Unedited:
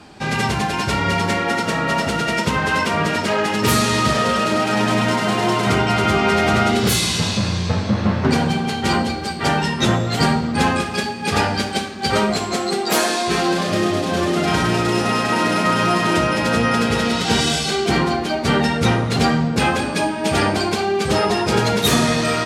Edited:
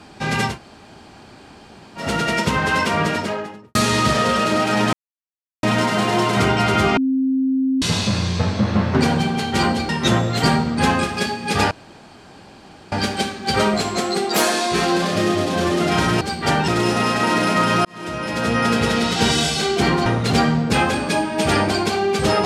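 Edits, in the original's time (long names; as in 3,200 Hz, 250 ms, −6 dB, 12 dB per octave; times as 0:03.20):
0:00.51–0:02.03: fill with room tone, crossfade 0.16 s
0:03.00–0:03.75: fade out and dull
0:04.93: splice in silence 0.70 s
0:06.27–0:07.12: beep over 264 Hz −15.5 dBFS
0:09.19–0:09.66: move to 0:14.77
0:11.48: splice in room tone 1.21 s
0:15.94–0:16.78: fade in
0:18.15–0:18.92: remove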